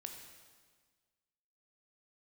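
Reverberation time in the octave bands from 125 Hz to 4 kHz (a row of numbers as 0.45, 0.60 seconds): 1.7, 1.7, 1.6, 1.5, 1.5, 1.5 seconds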